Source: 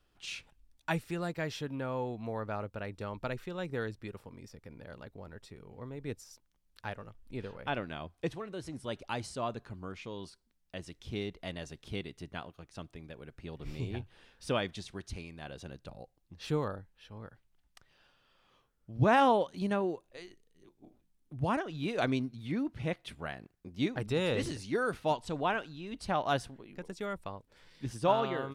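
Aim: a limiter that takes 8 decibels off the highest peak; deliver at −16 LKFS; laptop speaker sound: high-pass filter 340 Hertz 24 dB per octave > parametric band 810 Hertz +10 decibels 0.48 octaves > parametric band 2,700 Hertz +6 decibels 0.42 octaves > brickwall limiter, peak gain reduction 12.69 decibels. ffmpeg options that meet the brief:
ffmpeg -i in.wav -af "alimiter=limit=-22dB:level=0:latency=1,highpass=frequency=340:width=0.5412,highpass=frequency=340:width=1.3066,equalizer=frequency=810:width_type=o:width=0.48:gain=10,equalizer=frequency=2700:width_type=o:width=0.42:gain=6,volume=25dB,alimiter=limit=-2dB:level=0:latency=1" out.wav

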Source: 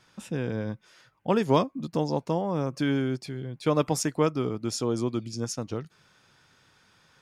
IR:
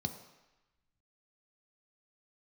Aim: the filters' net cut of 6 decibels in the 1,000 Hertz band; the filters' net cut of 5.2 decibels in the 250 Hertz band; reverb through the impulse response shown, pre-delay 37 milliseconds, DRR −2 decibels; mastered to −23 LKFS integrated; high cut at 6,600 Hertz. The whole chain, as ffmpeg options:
-filter_complex "[0:a]lowpass=6600,equalizer=frequency=250:width_type=o:gain=-6.5,equalizer=frequency=1000:width_type=o:gain=-7,asplit=2[link_01][link_02];[1:a]atrim=start_sample=2205,adelay=37[link_03];[link_02][link_03]afir=irnorm=-1:irlink=0,volume=1dB[link_04];[link_01][link_04]amix=inputs=2:normalize=0,volume=-0.5dB"

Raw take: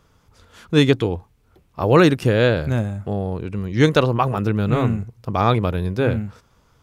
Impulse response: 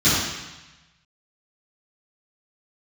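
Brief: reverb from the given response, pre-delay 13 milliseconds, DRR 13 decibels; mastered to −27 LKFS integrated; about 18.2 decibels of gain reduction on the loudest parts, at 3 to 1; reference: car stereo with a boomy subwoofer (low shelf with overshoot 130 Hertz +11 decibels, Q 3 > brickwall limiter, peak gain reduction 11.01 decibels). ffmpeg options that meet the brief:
-filter_complex "[0:a]acompressor=threshold=-35dB:ratio=3,asplit=2[link_01][link_02];[1:a]atrim=start_sample=2205,adelay=13[link_03];[link_02][link_03]afir=irnorm=-1:irlink=0,volume=-33dB[link_04];[link_01][link_04]amix=inputs=2:normalize=0,lowshelf=frequency=130:width_type=q:width=3:gain=11,volume=1dB,alimiter=limit=-19dB:level=0:latency=1"

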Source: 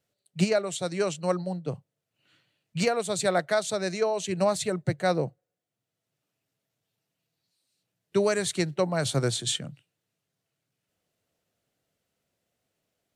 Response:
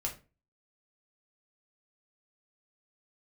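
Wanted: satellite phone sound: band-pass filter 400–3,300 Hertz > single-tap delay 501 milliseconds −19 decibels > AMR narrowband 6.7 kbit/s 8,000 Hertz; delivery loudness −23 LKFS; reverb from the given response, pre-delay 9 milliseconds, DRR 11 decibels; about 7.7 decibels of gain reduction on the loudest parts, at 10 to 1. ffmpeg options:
-filter_complex "[0:a]acompressor=threshold=-27dB:ratio=10,asplit=2[link_01][link_02];[1:a]atrim=start_sample=2205,adelay=9[link_03];[link_02][link_03]afir=irnorm=-1:irlink=0,volume=-13dB[link_04];[link_01][link_04]amix=inputs=2:normalize=0,highpass=400,lowpass=3300,aecho=1:1:501:0.112,volume=14dB" -ar 8000 -c:a libopencore_amrnb -b:a 6700

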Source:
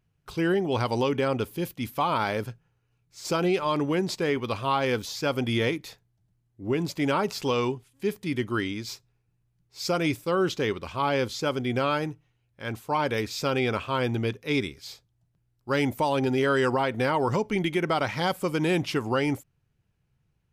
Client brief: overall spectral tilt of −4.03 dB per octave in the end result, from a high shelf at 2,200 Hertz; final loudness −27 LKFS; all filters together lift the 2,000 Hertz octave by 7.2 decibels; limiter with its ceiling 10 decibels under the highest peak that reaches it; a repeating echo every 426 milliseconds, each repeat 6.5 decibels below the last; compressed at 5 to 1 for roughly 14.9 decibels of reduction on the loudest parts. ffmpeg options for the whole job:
ffmpeg -i in.wav -af "equalizer=frequency=2000:width_type=o:gain=6,highshelf=frequency=2200:gain=5.5,acompressor=threshold=-36dB:ratio=5,alimiter=level_in=8dB:limit=-24dB:level=0:latency=1,volume=-8dB,aecho=1:1:426|852|1278|1704|2130|2556:0.473|0.222|0.105|0.0491|0.0231|0.0109,volume=14dB" out.wav

